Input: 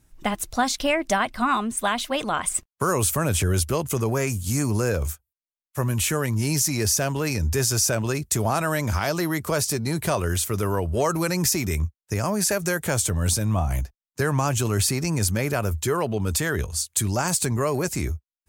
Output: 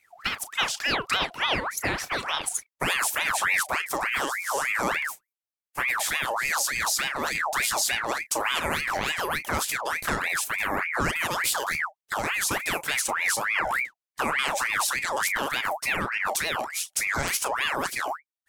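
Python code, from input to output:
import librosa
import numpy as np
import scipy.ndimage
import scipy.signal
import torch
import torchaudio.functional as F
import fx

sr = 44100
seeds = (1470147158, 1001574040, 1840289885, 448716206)

y = fx.doubler(x, sr, ms=32.0, db=-13.0)
y = fx.ring_lfo(y, sr, carrier_hz=1500.0, swing_pct=55, hz=3.4)
y = y * librosa.db_to_amplitude(-1.0)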